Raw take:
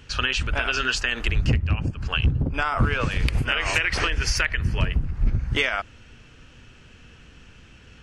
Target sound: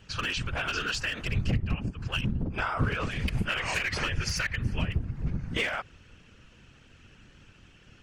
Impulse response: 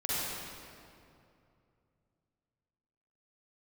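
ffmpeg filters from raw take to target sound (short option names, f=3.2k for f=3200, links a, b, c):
-af "aeval=exprs='clip(val(0),-1,0.158)':c=same,afftfilt=real='hypot(re,im)*cos(2*PI*random(0))':imag='hypot(re,im)*sin(2*PI*random(1))':win_size=512:overlap=0.75"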